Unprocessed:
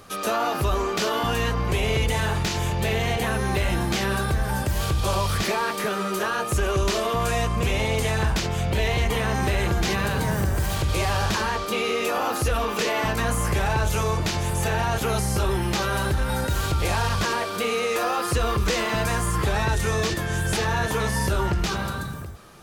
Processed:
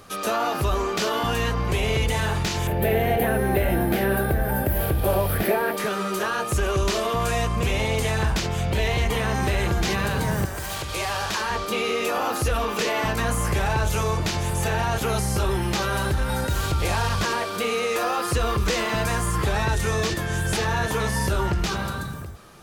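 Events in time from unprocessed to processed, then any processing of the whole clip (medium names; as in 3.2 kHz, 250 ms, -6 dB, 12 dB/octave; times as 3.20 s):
2.67–5.77 s: FFT filter 150 Hz 0 dB, 260 Hz +5 dB, 710 Hz +6 dB, 1.1 kHz -7 dB, 1.6 kHz +2 dB, 6.8 kHz -16 dB, 13 kHz +12 dB
10.45–11.50 s: bass shelf 320 Hz -12 dB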